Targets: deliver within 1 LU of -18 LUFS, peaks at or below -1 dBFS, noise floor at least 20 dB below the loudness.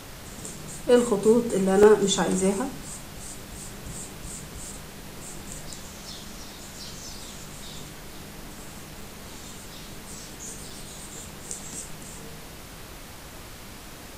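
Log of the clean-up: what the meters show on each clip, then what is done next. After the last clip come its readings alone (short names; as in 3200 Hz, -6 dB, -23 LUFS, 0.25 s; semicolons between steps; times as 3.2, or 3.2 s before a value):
dropouts 6; longest dropout 3.1 ms; noise floor -43 dBFS; noise floor target -47 dBFS; loudness -27.0 LUFS; peak -5.5 dBFS; loudness target -18.0 LUFS
-> interpolate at 0.57/1.83/4.36/6.12/9.01/10.7, 3.1 ms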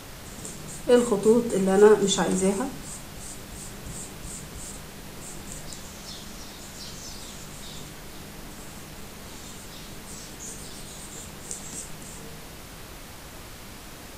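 dropouts 0; noise floor -43 dBFS; noise floor target -47 dBFS
-> noise print and reduce 6 dB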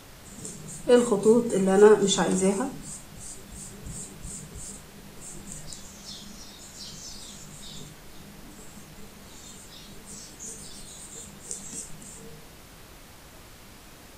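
noise floor -48 dBFS; loudness -24.5 LUFS; peak -5.0 dBFS; loudness target -18.0 LUFS
-> gain +6.5 dB; limiter -1 dBFS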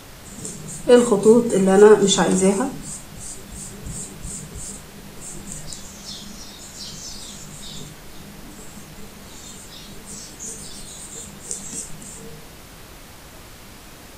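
loudness -18.5 LUFS; peak -1.0 dBFS; noise floor -42 dBFS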